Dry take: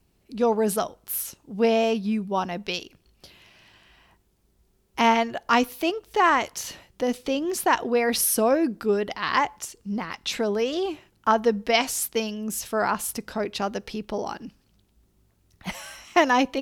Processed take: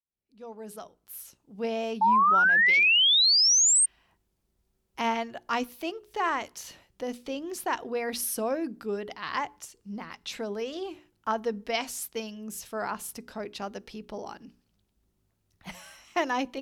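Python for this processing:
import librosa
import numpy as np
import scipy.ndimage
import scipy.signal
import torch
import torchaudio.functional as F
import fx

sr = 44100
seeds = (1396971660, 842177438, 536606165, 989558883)

y = fx.fade_in_head(x, sr, length_s=2.03)
y = fx.hum_notches(y, sr, base_hz=60, count=7)
y = fx.spec_paint(y, sr, seeds[0], shape='rise', start_s=2.01, length_s=1.85, low_hz=860.0, high_hz=8900.0, level_db=-12.0)
y = y * librosa.db_to_amplitude(-8.5)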